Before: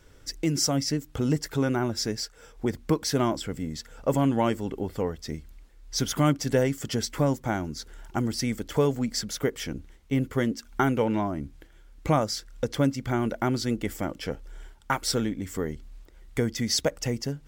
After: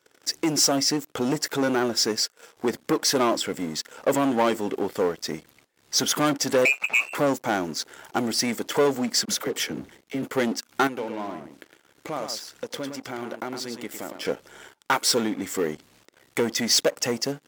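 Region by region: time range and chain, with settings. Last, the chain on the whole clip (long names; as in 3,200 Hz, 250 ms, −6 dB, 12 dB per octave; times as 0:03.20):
0:06.65–0:07.15: one scale factor per block 5 bits + voice inversion scrambler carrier 2,700 Hz
0:09.25–0:10.23: low-shelf EQ 250 Hz +6.5 dB + downward compressor 5 to 1, threshold −27 dBFS + all-pass dispersion lows, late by 40 ms, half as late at 510 Hz
0:10.87–0:14.25: downward compressor 2.5 to 1, threshold −41 dBFS + single-tap delay 108 ms −7 dB
whole clip: leveller curve on the samples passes 3; high-pass filter 310 Hz 12 dB per octave; level −2.5 dB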